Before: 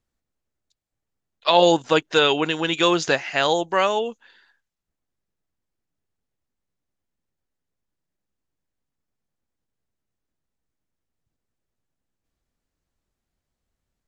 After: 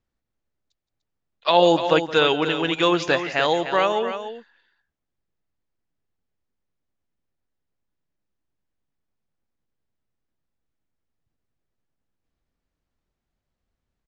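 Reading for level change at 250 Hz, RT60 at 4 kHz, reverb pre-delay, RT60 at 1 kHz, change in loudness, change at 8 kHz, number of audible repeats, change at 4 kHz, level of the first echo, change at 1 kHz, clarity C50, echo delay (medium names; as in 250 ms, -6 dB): +0.5 dB, no reverb, no reverb, no reverb, -0.5 dB, no reading, 2, -2.0 dB, -17.0 dB, 0.0 dB, no reverb, 169 ms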